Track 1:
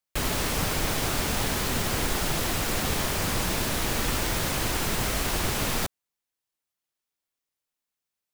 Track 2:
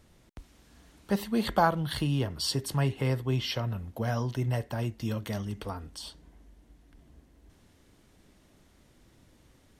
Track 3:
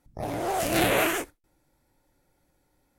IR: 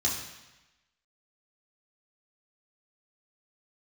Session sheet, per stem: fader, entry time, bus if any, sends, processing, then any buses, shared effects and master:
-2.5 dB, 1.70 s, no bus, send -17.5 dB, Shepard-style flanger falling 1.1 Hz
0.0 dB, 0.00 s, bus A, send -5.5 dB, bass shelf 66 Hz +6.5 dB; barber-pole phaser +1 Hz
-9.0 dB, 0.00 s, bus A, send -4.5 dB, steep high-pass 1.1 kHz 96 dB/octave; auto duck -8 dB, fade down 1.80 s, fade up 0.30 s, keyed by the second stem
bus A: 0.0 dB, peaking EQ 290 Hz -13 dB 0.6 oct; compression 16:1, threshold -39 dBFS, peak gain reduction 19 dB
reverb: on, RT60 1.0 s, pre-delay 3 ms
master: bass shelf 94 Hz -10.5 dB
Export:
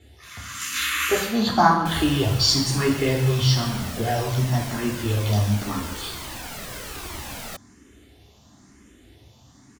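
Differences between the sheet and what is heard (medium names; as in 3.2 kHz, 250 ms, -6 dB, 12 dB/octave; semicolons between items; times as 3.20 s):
stem 1: send off; reverb return +8.5 dB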